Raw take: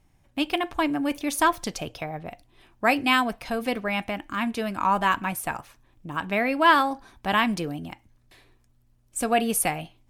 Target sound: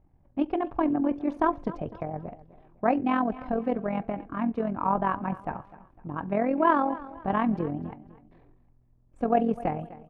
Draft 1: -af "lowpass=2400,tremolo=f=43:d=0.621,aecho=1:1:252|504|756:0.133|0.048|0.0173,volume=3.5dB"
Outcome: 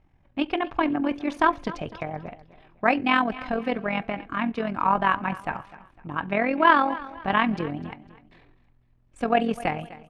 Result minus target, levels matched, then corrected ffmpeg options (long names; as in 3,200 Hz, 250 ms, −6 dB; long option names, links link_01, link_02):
2,000 Hz band +8.5 dB
-af "lowpass=840,tremolo=f=43:d=0.621,aecho=1:1:252|504|756:0.133|0.048|0.0173,volume=3.5dB"